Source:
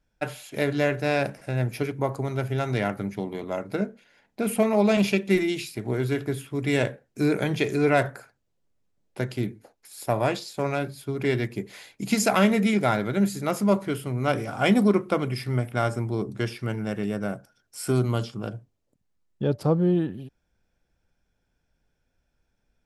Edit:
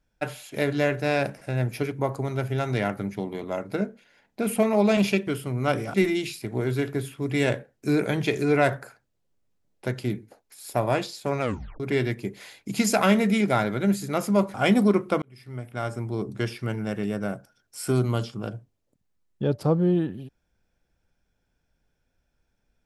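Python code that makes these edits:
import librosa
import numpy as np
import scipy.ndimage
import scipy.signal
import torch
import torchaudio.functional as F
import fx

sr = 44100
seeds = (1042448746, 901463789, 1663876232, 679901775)

y = fx.edit(x, sr, fx.tape_stop(start_s=10.74, length_s=0.39),
    fx.move(start_s=13.87, length_s=0.67, to_s=5.27),
    fx.fade_in_span(start_s=15.22, length_s=1.13), tone=tone)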